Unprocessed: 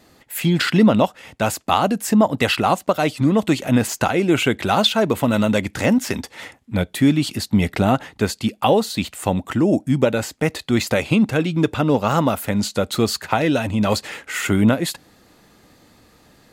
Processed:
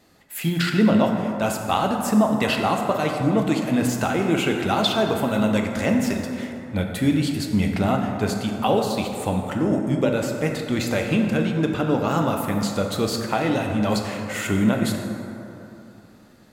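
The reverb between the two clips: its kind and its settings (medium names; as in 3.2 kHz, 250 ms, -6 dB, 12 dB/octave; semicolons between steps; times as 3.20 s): plate-style reverb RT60 3 s, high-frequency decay 0.4×, DRR 2 dB; trim -5.5 dB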